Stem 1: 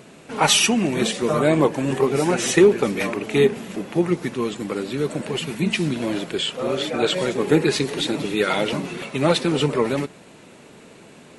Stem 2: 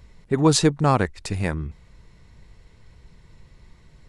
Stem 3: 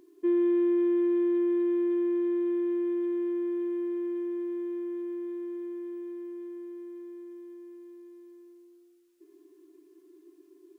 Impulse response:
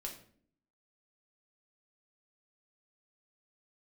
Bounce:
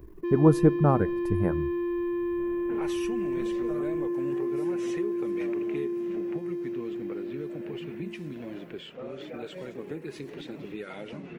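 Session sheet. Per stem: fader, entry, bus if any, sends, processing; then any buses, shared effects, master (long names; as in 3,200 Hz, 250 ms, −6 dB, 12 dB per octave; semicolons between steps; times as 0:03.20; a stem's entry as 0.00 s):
−5.0 dB, 2.40 s, no send, low-pass that shuts in the quiet parts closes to 1,300 Hz, open at −15.5 dBFS; downward compressor 4 to 1, threshold −31 dBFS, peak gain reduction 18 dB
−1.5 dB, 0.00 s, send −13 dB, reverb reduction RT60 0.71 s; flat-topped bell 4,000 Hz −15.5 dB 2.5 octaves
−3.0 dB, 0.00 s, no send, leveller curve on the samples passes 3; brickwall limiter −24 dBFS, peak gain reduction 4 dB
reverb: on, RT60 0.55 s, pre-delay 5 ms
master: octave-band graphic EQ 1,000/4,000/8,000 Hz −6/−8/−9 dB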